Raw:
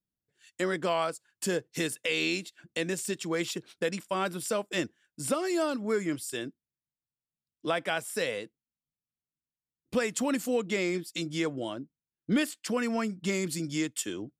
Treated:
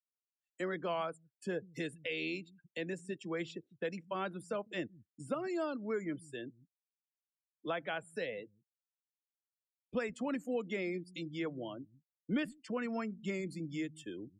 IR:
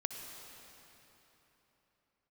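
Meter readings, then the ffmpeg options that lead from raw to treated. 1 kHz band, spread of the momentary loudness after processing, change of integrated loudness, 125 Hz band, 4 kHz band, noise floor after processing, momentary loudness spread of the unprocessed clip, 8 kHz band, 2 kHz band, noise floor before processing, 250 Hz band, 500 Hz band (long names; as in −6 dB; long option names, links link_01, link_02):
−7.5 dB, 10 LU, −8.5 dB, −7.0 dB, −12.5 dB, below −85 dBFS, 9 LU, −21.5 dB, −8.5 dB, below −85 dBFS, −7.5 dB, −7.5 dB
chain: -filter_complex "[0:a]afftdn=noise_reduction=34:noise_floor=-40,acrossover=split=160|450|3500[link_01][link_02][link_03][link_04];[link_01]aecho=1:1:152:0.631[link_05];[link_04]acompressor=threshold=-52dB:ratio=6[link_06];[link_05][link_02][link_03][link_06]amix=inputs=4:normalize=0,volume=-7.5dB"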